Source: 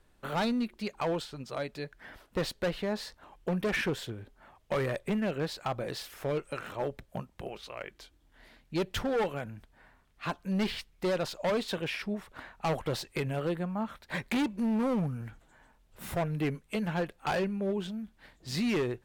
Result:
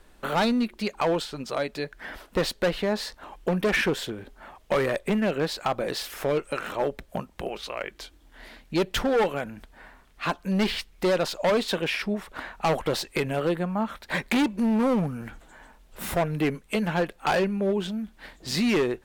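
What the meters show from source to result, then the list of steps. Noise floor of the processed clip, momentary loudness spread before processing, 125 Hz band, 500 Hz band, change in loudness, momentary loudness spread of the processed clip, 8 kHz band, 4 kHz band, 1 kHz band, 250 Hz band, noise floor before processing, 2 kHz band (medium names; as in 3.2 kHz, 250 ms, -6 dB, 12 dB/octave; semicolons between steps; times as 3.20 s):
-56 dBFS, 13 LU, +3.0 dB, +7.0 dB, +6.5 dB, 12 LU, +8.0 dB, +7.5 dB, +7.0 dB, +5.5 dB, -66 dBFS, +7.5 dB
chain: peaking EQ 110 Hz -11.5 dB 0.75 oct; in parallel at -2 dB: compression, threshold -45 dBFS, peak gain reduction 16.5 dB; on the sum: trim +6 dB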